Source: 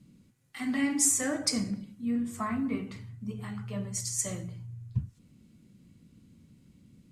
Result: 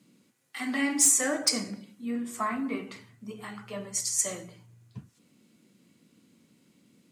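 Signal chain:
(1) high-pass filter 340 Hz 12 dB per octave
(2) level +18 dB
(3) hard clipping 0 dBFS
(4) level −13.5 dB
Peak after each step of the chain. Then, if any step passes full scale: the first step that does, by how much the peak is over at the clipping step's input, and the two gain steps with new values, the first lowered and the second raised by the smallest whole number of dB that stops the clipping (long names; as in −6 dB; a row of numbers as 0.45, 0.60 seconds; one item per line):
−11.5, +6.5, 0.0, −13.5 dBFS
step 2, 6.5 dB
step 2 +11 dB, step 4 −6.5 dB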